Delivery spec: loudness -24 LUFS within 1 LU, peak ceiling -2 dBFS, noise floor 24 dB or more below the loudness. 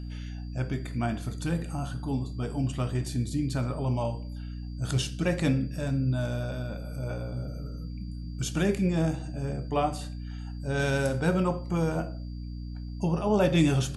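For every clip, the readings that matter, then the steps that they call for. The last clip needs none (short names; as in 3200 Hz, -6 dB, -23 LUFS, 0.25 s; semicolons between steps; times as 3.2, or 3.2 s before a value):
hum 60 Hz; harmonics up to 300 Hz; hum level -34 dBFS; steady tone 4700 Hz; tone level -58 dBFS; loudness -30.0 LUFS; peak -11.5 dBFS; loudness target -24.0 LUFS
-> de-hum 60 Hz, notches 5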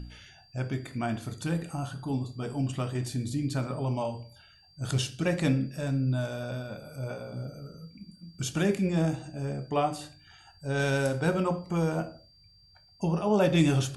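hum none; steady tone 4700 Hz; tone level -58 dBFS
-> notch 4700 Hz, Q 30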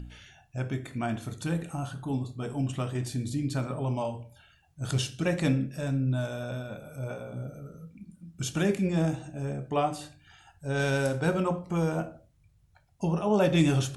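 steady tone none; loudness -30.0 LUFS; peak -11.5 dBFS; loudness target -24.0 LUFS
-> gain +6 dB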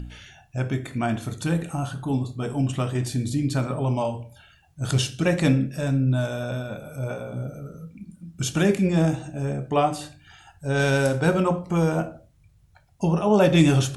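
loudness -24.0 LUFS; peak -5.5 dBFS; noise floor -58 dBFS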